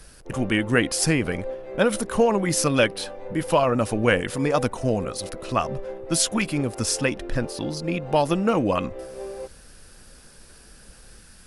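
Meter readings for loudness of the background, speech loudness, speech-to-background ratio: -37.0 LUFS, -23.5 LUFS, 13.5 dB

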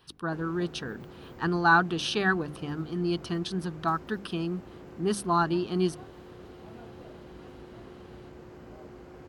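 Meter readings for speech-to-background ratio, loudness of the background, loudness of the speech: 19.0 dB, -47.5 LUFS, -28.5 LUFS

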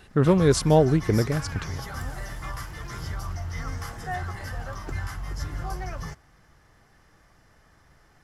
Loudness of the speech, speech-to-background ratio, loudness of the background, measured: -21.0 LUFS, 14.0 dB, -35.0 LUFS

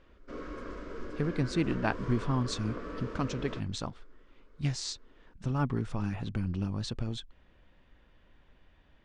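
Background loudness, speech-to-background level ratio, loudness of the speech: -42.0 LUFS, 8.0 dB, -34.0 LUFS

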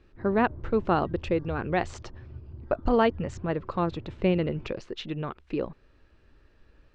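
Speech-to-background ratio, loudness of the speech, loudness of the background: 16.5 dB, -28.5 LUFS, -45.0 LUFS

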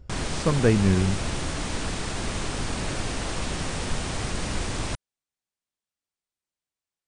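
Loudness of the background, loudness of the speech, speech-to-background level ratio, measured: -30.5 LUFS, -23.5 LUFS, 7.0 dB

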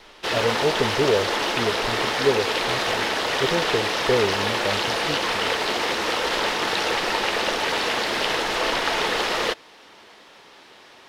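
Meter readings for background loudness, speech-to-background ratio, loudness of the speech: -22.5 LUFS, -4.5 dB, -27.0 LUFS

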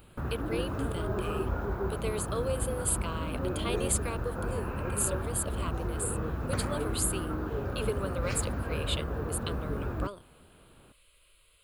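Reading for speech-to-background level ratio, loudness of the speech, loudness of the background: -1.0 dB, -35.5 LUFS, -34.5 LUFS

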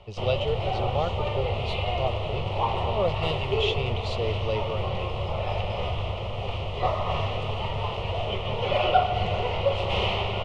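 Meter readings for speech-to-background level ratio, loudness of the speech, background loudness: -4.0 dB, -32.0 LUFS, -28.0 LUFS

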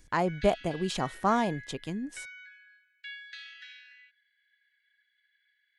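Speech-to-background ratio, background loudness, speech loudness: 15.5 dB, -45.5 LUFS, -30.0 LUFS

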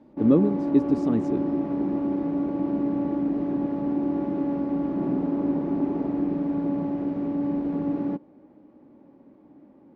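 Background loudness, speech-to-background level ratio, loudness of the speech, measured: -27.0 LUFS, 3.0 dB, -24.0 LUFS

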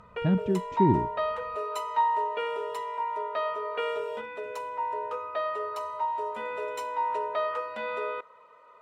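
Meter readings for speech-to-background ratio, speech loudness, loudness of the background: 4.5 dB, -27.0 LUFS, -31.5 LUFS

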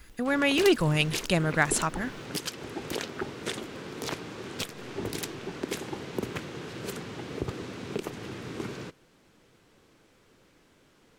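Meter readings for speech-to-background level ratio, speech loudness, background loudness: 11.0 dB, -25.5 LUFS, -36.5 LUFS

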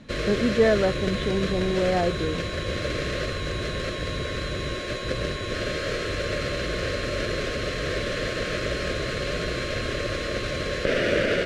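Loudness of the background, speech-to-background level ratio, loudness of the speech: -28.0 LUFS, 2.5 dB, -25.5 LUFS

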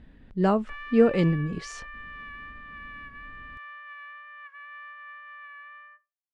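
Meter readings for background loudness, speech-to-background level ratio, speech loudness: -42.0 LUFS, 17.5 dB, -24.5 LUFS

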